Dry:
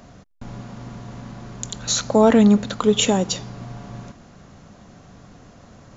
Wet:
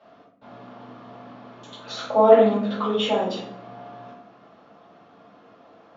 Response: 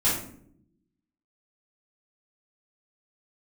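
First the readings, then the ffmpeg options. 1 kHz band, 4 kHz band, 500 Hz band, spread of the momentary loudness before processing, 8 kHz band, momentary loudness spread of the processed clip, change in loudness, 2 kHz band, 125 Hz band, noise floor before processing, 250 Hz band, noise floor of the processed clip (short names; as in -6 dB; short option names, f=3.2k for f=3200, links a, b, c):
+2.0 dB, -6.0 dB, +1.5 dB, 22 LU, n/a, 20 LU, -2.0 dB, -4.5 dB, under -10 dB, -48 dBFS, -9.0 dB, -53 dBFS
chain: -filter_complex "[0:a]highpass=340,equalizer=f=440:t=q:w=4:g=6,equalizer=f=690:t=q:w=4:g=10,equalizer=f=1.2k:t=q:w=4:g=7,equalizer=f=3.1k:t=q:w=4:g=3,lowpass=f=4.1k:w=0.5412,lowpass=f=4.1k:w=1.3066[a];[1:a]atrim=start_sample=2205[b];[a][b]afir=irnorm=-1:irlink=0,volume=-17.5dB"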